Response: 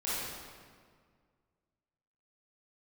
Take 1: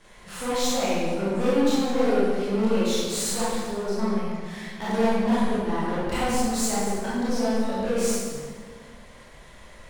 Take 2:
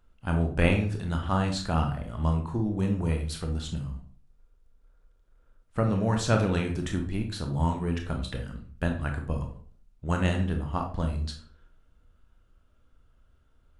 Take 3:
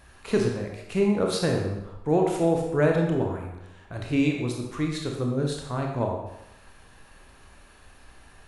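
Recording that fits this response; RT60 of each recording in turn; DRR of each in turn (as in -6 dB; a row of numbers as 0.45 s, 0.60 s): 1; 1.9 s, 0.45 s, 0.90 s; -11.0 dB, 3.0 dB, 0.5 dB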